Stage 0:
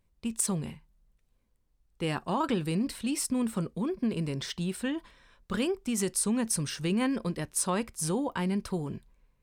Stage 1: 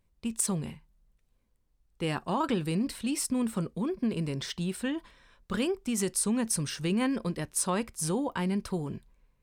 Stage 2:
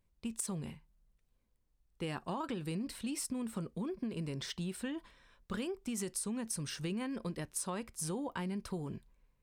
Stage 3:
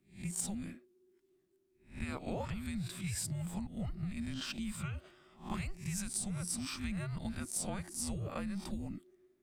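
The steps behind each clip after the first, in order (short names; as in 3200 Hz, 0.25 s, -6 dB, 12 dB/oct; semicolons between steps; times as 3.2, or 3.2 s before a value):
nothing audible
compressor, threshold -30 dBFS, peak gain reduction 7.5 dB; gain -4.5 dB
spectral swells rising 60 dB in 0.35 s; frequency shift -400 Hz; gain -1 dB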